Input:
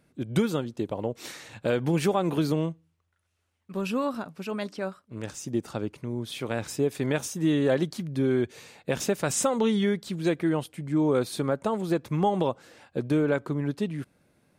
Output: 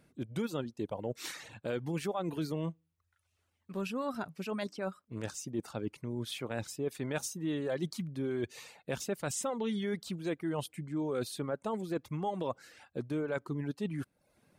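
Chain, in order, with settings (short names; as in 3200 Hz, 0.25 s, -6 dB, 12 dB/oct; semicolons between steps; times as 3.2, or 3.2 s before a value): reverb removal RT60 0.59 s; reverse; compressor 4:1, threshold -33 dBFS, peak gain reduction 13 dB; reverse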